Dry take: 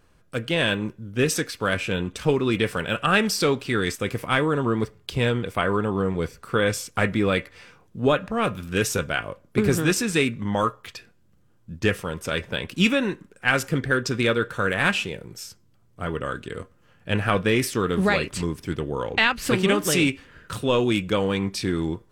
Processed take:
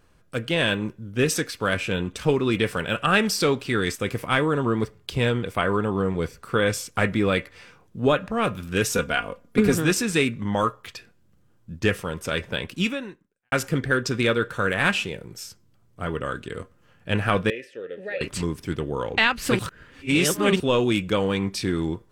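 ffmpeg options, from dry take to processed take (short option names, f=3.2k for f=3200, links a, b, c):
-filter_complex "[0:a]asettb=1/sr,asplit=3[a][b][c];[a]atrim=end=8.924[d];[b]atrim=start=8.92:end=9.74,asetpts=PTS-STARTPTS,afade=t=in:d=0.004:c=qsin,afade=t=out:st=0.816:d=0.004:c=qsin,aecho=1:1:4.2:0.62,atrim=end_sample=36162[e];[c]atrim=start=9.736[f];[d][e]acrossfade=d=0.004:c1=hsin:c2=qsin[g];[g][f]acrossfade=d=0.004:c1=qsin:c2=hsin,asettb=1/sr,asplit=3[h][i][j];[h]atrim=end=17.504[k];[i]atrim=start=17.5:end=18.21,asetpts=PTS-STARTPTS,afade=t=in:d=0.004:c=qsin,afade=t=out:st=0.706:d=0.004:c=qsin,asplit=3[l][m][n];[l]bandpass=f=530:t=q:w=8,volume=0dB[o];[m]bandpass=f=1.84k:t=q:w=8,volume=-6dB[p];[n]bandpass=f=2.48k:t=q:w=8,volume=-9dB[q];[o][p][q]amix=inputs=3:normalize=0[r];[j]atrim=start=18.206[s];[k][r]acrossfade=d=0.004:c1=hsin:c2=qsin[t];[t][s]acrossfade=d=0.004:c1=qsin:c2=hsin,asplit=4[u][v][w][x];[u]atrim=end=13.52,asetpts=PTS-STARTPTS,afade=t=out:st=12.63:d=0.89:c=qua[y];[v]atrim=start=13.52:end=19.592,asetpts=PTS-STARTPTS,afade=t=in:d=0.004:c=hsin[z];[w]atrim=start=19.588:end=20.602,asetpts=PTS-STARTPTS,areverse[aa];[x]atrim=start=20.598[ab];[y][z]concat=n=2:v=0:a=1[ac];[ac][aa]acrossfade=d=0.004:c1=hsin:c2=hsin[ad];[ad][ab]acrossfade=d=0.004:c1=hsin:c2=hsin"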